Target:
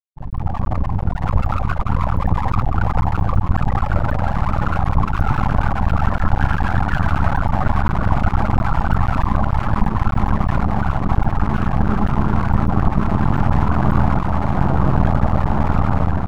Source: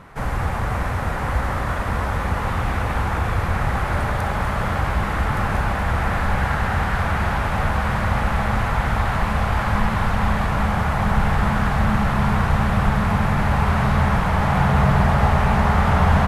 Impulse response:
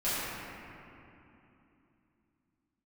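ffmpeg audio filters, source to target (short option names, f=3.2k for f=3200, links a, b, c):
-filter_complex "[0:a]afftfilt=real='re*gte(hypot(re,im),0.2)':imag='im*gte(hypot(re,im),0.2)':win_size=1024:overlap=0.75,acrossover=split=590|5800[a][b][c];[b]alimiter=level_in=1.5dB:limit=-24dB:level=0:latency=1:release=75,volume=-1.5dB[d];[a][d][c]amix=inputs=3:normalize=0,equalizer=f=2.9k:w=0.54:g=6,aeval=exprs='max(val(0),0)':c=same,dynaudnorm=f=140:g=7:m=11.5dB"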